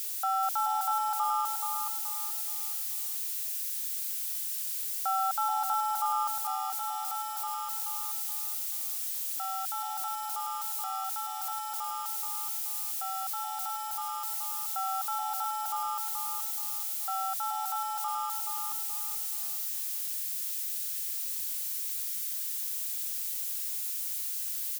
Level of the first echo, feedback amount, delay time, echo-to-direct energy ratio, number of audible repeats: -6.0 dB, 36%, 427 ms, -5.5 dB, 4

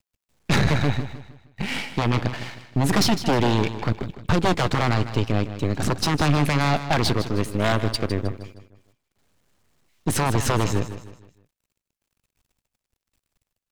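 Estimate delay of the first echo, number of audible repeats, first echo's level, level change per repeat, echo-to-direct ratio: 156 ms, 3, -12.0 dB, -8.0 dB, -11.5 dB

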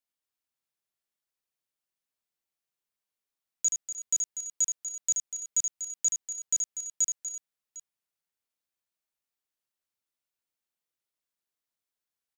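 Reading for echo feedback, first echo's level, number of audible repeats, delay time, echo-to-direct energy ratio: no regular repeats, -5.5 dB, 5, 76 ms, -3.5 dB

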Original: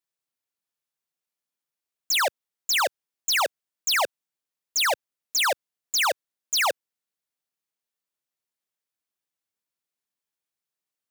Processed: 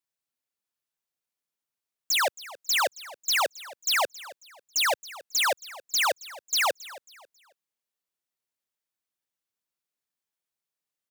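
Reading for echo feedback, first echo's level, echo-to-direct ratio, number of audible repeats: 32%, -18.5 dB, -18.0 dB, 2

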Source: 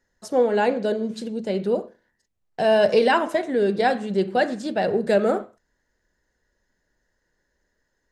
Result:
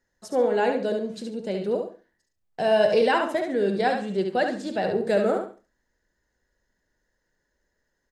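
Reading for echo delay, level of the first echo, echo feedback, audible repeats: 70 ms, -6.0 dB, 23%, 3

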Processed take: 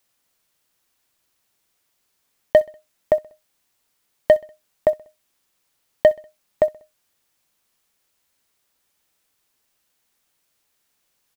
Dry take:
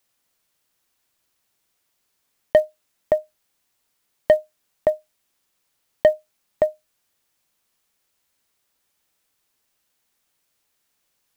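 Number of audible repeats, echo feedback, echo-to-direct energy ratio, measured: 2, 48%, -22.0 dB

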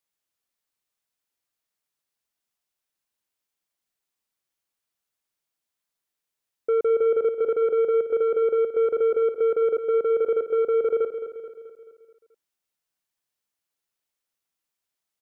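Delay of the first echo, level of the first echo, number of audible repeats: 216 ms, -10.0 dB, 5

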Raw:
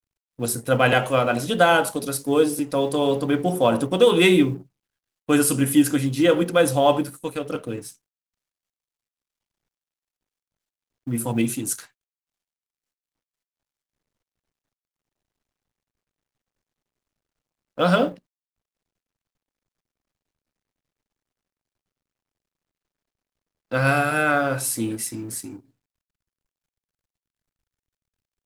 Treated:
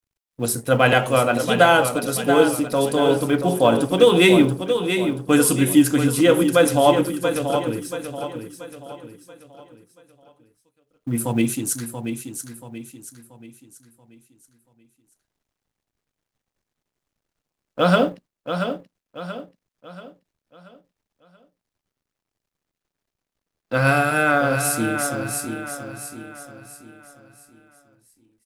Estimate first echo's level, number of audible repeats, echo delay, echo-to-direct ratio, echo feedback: -8.0 dB, 4, 682 ms, -7.0 dB, 41%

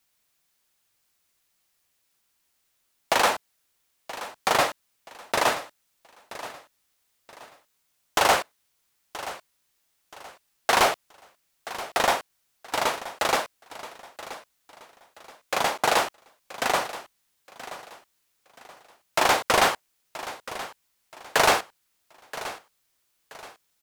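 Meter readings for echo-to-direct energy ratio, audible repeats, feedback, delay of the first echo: -14.5 dB, 3, 33%, 977 ms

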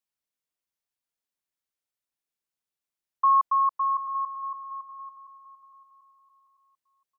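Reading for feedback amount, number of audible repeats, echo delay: 32%, 3, 740 ms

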